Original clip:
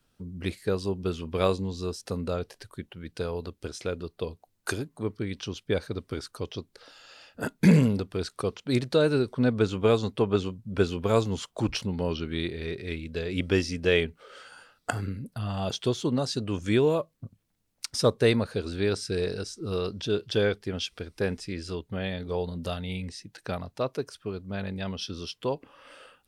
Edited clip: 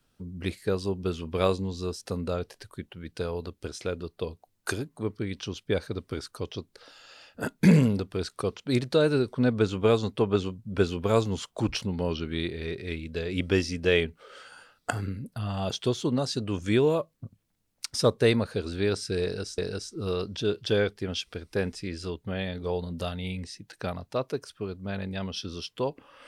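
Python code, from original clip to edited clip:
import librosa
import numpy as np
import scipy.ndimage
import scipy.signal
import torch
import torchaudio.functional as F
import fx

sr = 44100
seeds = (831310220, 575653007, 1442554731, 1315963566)

y = fx.edit(x, sr, fx.repeat(start_s=19.23, length_s=0.35, count=2), tone=tone)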